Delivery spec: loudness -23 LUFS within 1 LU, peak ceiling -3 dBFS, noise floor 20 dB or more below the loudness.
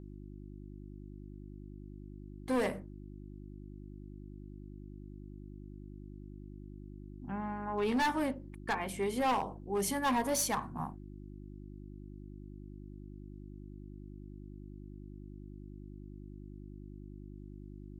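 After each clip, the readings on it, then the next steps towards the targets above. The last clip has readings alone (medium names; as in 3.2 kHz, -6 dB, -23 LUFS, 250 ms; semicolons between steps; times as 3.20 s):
clipped samples 0.9%; clipping level -26.5 dBFS; hum 50 Hz; highest harmonic 350 Hz; hum level -46 dBFS; loudness -34.0 LUFS; peak level -26.5 dBFS; loudness target -23.0 LUFS
-> clip repair -26.5 dBFS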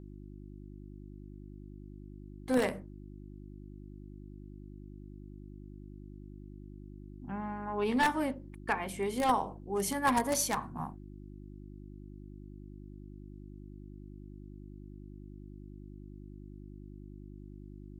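clipped samples 0.0%; hum 50 Hz; highest harmonic 350 Hz; hum level -46 dBFS
-> de-hum 50 Hz, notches 7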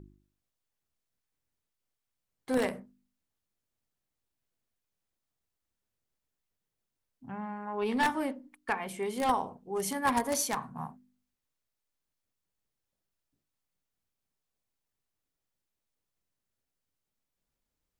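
hum not found; loudness -32.0 LUFS; peak level -16.0 dBFS; loudness target -23.0 LUFS
-> trim +9 dB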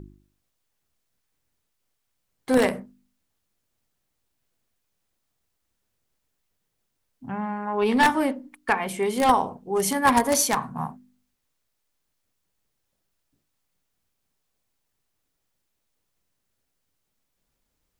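loudness -23.0 LUFS; peak level -7.0 dBFS; noise floor -77 dBFS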